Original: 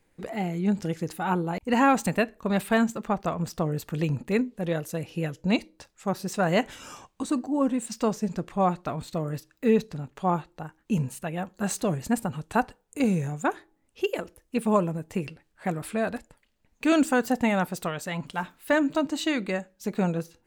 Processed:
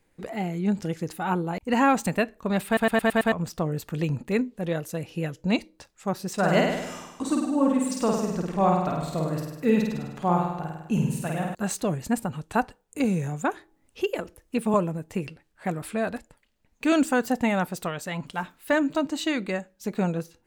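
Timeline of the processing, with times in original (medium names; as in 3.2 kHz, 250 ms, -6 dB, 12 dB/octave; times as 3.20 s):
2.66 s: stutter in place 0.11 s, 6 plays
6.33–11.55 s: flutter echo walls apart 8.7 m, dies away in 0.97 s
12.98–14.74 s: three bands compressed up and down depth 40%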